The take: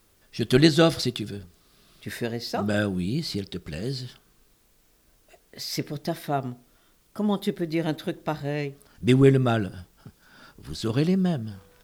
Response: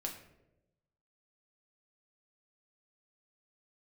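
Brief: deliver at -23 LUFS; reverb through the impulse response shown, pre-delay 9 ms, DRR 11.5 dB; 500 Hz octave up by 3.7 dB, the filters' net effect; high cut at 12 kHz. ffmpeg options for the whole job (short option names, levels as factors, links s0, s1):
-filter_complex "[0:a]lowpass=12000,equalizer=f=500:t=o:g=5,asplit=2[s0][s1];[1:a]atrim=start_sample=2205,adelay=9[s2];[s1][s2]afir=irnorm=-1:irlink=0,volume=0.282[s3];[s0][s3]amix=inputs=2:normalize=0,volume=1.06"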